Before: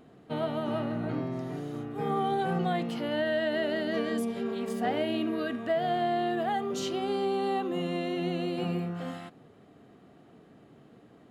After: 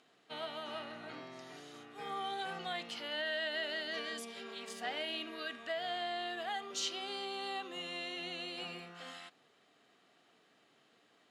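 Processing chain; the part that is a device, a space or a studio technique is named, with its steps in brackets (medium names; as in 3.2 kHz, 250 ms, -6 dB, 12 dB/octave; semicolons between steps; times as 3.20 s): piezo pickup straight into a mixer (low-pass 5 kHz 12 dB/octave; differentiator); trim +9 dB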